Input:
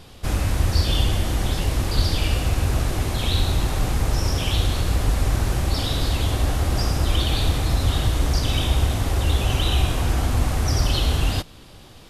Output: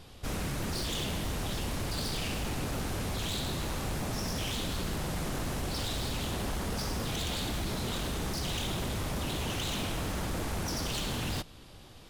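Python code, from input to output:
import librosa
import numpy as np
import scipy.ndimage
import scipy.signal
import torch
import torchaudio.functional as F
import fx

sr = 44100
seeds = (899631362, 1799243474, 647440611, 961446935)

y = 10.0 ** (-22.0 / 20.0) * (np.abs((x / 10.0 ** (-22.0 / 20.0) + 3.0) % 4.0 - 2.0) - 1.0)
y = y * librosa.db_to_amplitude(-6.5)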